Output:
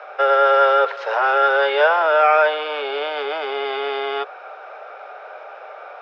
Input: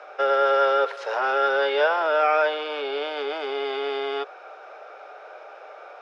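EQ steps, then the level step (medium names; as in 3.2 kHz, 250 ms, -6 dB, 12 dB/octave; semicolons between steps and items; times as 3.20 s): high-pass 500 Hz 12 dB/octave; distance through air 170 m; +7.5 dB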